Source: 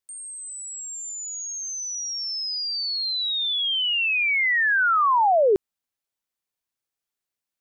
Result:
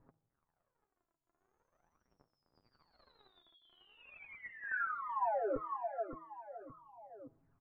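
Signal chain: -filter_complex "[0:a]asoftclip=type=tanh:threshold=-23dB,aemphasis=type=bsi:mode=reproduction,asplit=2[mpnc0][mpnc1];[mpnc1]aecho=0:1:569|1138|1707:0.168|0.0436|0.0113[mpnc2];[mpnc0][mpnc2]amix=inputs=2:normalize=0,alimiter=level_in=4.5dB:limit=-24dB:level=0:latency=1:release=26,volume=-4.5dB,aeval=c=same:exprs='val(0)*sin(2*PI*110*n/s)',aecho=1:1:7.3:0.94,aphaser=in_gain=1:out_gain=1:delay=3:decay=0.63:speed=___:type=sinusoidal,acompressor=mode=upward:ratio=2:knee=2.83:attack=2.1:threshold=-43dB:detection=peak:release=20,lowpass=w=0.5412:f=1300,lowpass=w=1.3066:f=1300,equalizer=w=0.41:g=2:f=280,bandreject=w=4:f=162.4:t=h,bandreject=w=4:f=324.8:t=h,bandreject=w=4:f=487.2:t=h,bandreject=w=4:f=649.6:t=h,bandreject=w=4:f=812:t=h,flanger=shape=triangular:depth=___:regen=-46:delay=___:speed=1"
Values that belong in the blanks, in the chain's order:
0.42, 9.7, 2.9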